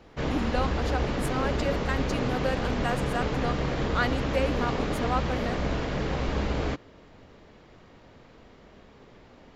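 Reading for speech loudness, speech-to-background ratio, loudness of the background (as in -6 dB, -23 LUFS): -32.5 LUFS, -3.0 dB, -29.5 LUFS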